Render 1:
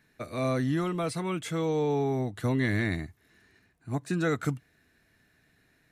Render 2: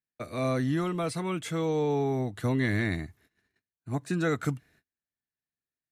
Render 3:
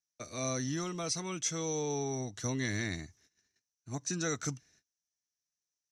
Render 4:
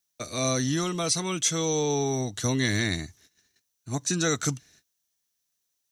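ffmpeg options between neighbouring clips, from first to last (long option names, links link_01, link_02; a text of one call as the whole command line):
ffmpeg -i in.wav -af "agate=range=-34dB:threshold=-59dB:ratio=16:detection=peak" out.wav
ffmpeg -i in.wav -af "lowpass=frequency=5900:width_type=q:width=11,aemphasis=mode=production:type=50kf,volume=-8dB" out.wav
ffmpeg -i in.wav -af "aexciter=amount=1.7:drive=2.9:freq=3100,volume=8.5dB" out.wav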